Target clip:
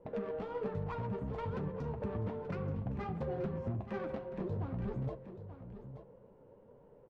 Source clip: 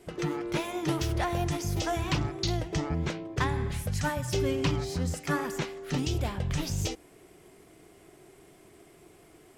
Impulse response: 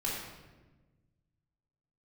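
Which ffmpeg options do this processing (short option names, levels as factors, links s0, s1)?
-filter_complex "[0:a]highshelf=f=2600:g=-12,acompressor=threshold=0.0282:ratio=5,volume=29.9,asoftclip=hard,volume=0.0335,adynamicsmooth=sensitivity=1.5:basefreq=610,flanger=delay=7.5:depth=8.8:regen=-43:speed=0.86:shape=triangular,aecho=1:1:1189:0.266,asplit=2[s0][s1];[1:a]atrim=start_sample=2205[s2];[s1][s2]afir=irnorm=-1:irlink=0,volume=0.0841[s3];[s0][s3]amix=inputs=2:normalize=0,asetrate=59535,aresample=44100,volume=1.19"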